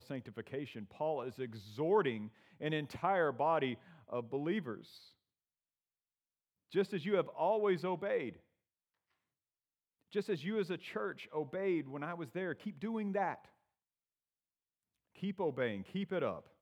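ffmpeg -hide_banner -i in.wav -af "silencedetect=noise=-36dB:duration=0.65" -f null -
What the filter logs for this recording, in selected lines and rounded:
silence_start: 4.75
silence_end: 6.75 | silence_duration: 2.01
silence_start: 8.29
silence_end: 10.15 | silence_duration: 1.86
silence_start: 13.34
silence_end: 15.23 | silence_duration: 1.89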